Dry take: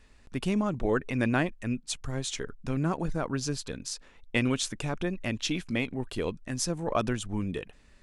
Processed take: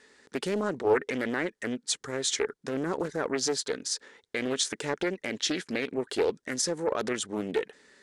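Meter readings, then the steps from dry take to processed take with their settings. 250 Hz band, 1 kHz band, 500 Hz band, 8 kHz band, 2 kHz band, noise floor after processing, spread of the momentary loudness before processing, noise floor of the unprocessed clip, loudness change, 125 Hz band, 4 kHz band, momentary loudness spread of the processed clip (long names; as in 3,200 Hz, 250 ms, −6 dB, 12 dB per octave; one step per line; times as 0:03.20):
−3.0 dB, 0.0 dB, +4.5 dB, +4.5 dB, +1.0 dB, −74 dBFS, 8 LU, −57 dBFS, +1.0 dB, −11.0 dB, +4.0 dB, 5 LU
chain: brickwall limiter −22 dBFS, peak gain reduction 10.5 dB
loudspeaker in its box 350–9,900 Hz, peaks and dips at 430 Hz +6 dB, 670 Hz −9 dB, 1,100 Hz −6 dB, 1,800 Hz +4 dB, 2,600 Hz −9 dB
highs frequency-modulated by the lows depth 0.33 ms
level +7 dB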